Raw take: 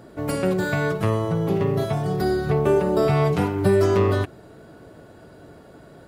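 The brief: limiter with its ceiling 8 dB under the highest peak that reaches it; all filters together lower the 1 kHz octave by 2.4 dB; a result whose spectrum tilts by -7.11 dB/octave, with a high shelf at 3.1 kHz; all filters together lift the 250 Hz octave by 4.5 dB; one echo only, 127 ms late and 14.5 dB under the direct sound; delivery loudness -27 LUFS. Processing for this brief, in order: peaking EQ 250 Hz +7.5 dB; peaking EQ 1 kHz -3 dB; treble shelf 3.1 kHz -7 dB; peak limiter -13.5 dBFS; delay 127 ms -14.5 dB; trim -5 dB

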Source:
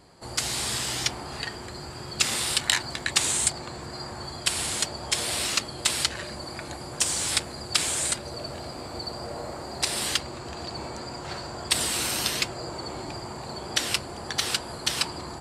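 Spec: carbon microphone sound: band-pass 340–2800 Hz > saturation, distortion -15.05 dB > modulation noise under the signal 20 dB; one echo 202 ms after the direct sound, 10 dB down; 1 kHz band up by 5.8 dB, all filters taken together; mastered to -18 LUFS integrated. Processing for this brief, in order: band-pass 340–2800 Hz; peaking EQ 1 kHz +7.5 dB; delay 202 ms -10 dB; saturation -20 dBFS; modulation noise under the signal 20 dB; trim +14.5 dB

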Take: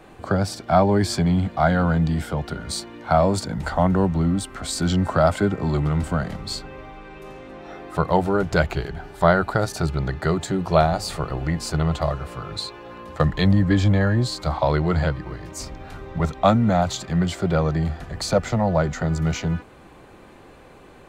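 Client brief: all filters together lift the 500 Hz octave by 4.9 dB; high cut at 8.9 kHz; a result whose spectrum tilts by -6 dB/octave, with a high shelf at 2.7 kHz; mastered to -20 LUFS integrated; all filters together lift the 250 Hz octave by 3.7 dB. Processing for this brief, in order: low-pass 8.9 kHz; peaking EQ 250 Hz +4.5 dB; peaking EQ 500 Hz +5 dB; treble shelf 2.7 kHz +5 dB; trim -1 dB

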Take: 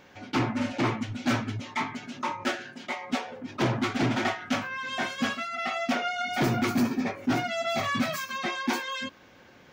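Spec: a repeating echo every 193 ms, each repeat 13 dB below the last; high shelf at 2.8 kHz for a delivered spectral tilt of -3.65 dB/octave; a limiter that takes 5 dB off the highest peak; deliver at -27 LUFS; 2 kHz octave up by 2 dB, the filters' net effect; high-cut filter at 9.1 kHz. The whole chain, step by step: low-pass 9.1 kHz; peaking EQ 2 kHz +5 dB; treble shelf 2.8 kHz -6.5 dB; peak limiter -21.5 dBFS; feedback delay 193 ms, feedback 22%, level -13 dB; trim +3.5 dB

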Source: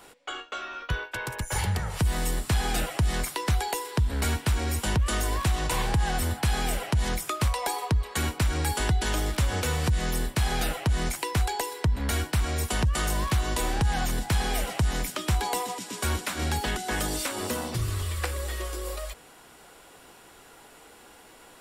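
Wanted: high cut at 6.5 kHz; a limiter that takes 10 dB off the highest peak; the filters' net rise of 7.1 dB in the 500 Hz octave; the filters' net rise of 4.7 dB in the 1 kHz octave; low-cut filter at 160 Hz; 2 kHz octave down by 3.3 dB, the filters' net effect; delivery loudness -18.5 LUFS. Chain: high-pass 160 Hz; low-pass 6.5 kHz; peaking EQ 500 Hz +8 dB; peaking EQ 1 kHz +4.5 dB; peaking EQ 2 kHz -7 dB; trim +13 dB; peak limiter -8.5 dBFS

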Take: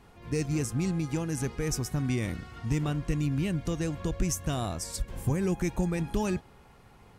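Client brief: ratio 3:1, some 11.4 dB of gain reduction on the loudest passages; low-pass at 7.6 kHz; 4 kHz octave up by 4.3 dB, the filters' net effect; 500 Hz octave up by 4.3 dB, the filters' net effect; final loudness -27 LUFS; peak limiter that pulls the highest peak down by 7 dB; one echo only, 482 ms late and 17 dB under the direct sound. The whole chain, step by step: low-pass 7.6 kHz; peaking EQ 500 Hz +5.5 dB; peaking EQ 4 kHz +6.5 dB; compression 3:1, threshold -38 dBFS; peak limiter -31.5 dBFS; delay 482 ms -17 dB; trim +14.5 dB

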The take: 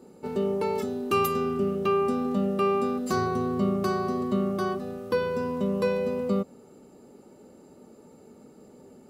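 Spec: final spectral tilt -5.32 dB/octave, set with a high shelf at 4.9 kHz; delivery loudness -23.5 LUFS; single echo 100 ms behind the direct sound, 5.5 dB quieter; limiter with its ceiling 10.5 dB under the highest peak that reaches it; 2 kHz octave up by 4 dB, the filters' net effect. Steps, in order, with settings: peaking EQ 2 kHz +5.5 dB; treble shelf 4.9 kHz +3 dB; peak limiter -22.5 dBFS; delay 100 ms -5.5 dB; trim +6.5 dB

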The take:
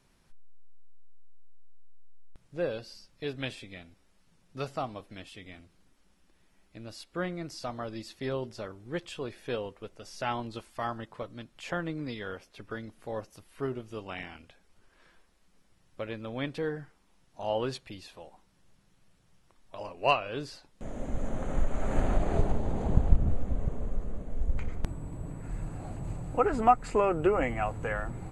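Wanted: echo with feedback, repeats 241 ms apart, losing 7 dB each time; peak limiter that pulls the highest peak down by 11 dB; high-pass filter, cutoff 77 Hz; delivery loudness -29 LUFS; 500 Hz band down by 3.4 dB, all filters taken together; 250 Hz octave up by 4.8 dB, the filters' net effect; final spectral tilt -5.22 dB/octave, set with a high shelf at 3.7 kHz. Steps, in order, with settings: high-pass 77 Hz; peaking EQ 250 Hz +8.5 dB; peaking EQ 500 Hz -7.5 dB; treble shelf 3.7 kHz +7 dB; peak limiter -21 dBFS; feedback delay 241 ms, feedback 45%, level -7 dB; trim +6 dB

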